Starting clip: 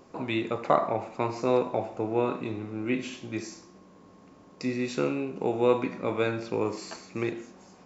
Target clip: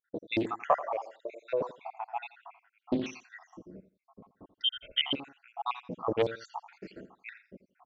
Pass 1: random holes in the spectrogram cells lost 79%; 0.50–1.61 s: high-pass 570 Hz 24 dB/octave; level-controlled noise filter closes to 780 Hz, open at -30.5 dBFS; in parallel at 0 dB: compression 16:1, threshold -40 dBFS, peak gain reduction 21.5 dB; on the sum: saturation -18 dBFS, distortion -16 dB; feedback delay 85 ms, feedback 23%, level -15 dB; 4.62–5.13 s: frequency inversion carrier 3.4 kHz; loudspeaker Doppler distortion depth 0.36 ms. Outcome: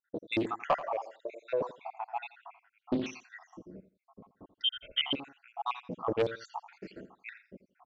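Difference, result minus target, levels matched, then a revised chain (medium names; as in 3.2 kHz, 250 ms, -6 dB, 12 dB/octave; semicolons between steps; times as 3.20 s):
saturation: distortion +18 dB
random holes in the spectrogram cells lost 79%; 0.50–1.61 s: high-pass 570 Hz 24 dB/octave; level-controlled noise filter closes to 780 Hz, open at -30.5 dBFS; in parallel at 0 dB: compression 16:1, threshold -40 dBFS, peak gain reduction 21.5 dB; on the sum: saturation -6 dBFS, distortion -34 dB; feedback delay 85 ms, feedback 23%, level -15 dB; 4.62–5.13 s: frequency inversion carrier 3.4 kHz; loudspeaker Doppler distortion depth 0.36 ms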